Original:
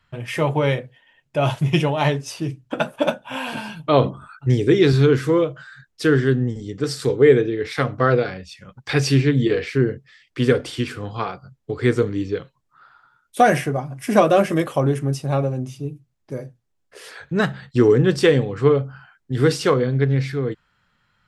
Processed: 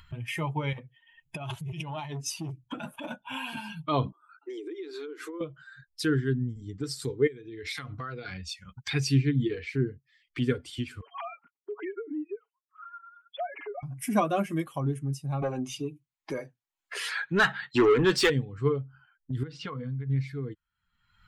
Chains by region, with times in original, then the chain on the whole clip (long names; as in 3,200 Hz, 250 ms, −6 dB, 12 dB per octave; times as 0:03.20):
0:00.73–0:03.16: compressor whose output falls as the input rises −25 dBFS + saturating transformer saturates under 690 Hz
0:04.12–0:05.41: Butterworth high-pass 300 Hz 72 dB per octave + high-shelf EQ 2,500 Hz −5.5 dB + downward compressor 16 to 1, threshold −27 dBFS
0:07.27–0:08.91: high-shelf EQ 2,100 Hz +7 dB + downward compressor 4 to 1, threshold −26 dBFS
0:11.01–0:13.83: three sine waves on the formant tracks + comb filter 7.2 ms + downward compressor 3 to 1, threshold −26 dBFS
0:15.42–0:18.30: low-shelf EQ 250 Hz −7.5 dB + mid-hump overdrive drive 25 dB, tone 2,800 Hz, clips at −4.5 dBFS
0:19.43–0:20.10: notch filter 370 Hz, Q 5.1 + downward compressor 10 to 1, threshold −21 dBFS + low-pass filter 3,500 Hz
whole clip: spectral dynamics exaggerated over time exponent 1.5; parametric band 550 Hz −9 dB 0.52 octaves; upward compression, threshold −23 dBFS; level −5 dB